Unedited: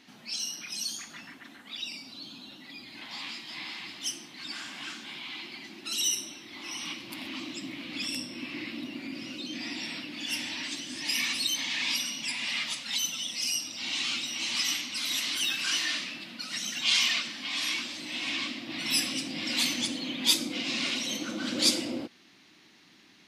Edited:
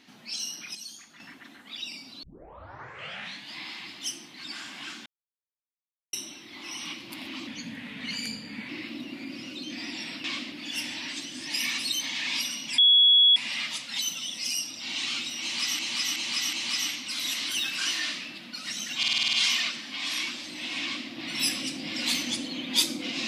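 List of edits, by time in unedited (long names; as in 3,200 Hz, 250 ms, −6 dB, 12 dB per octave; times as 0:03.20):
0:00.75–0:01.20: clip gain −8 dB
0:02.23: tape start 1.33 s
0:05.06–0:06.13: silence
0:07.47–0:08.52: play speed 86%
0:12.33: insert tone 3,360 Hz −14.5 dBFS 0.58 s
0:14.39–0:14.76: repeat, 4 plays
0:16.84: stutter 0.05 s, 8 plays
0:18.33–0:18.61: duplicate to 0:10.07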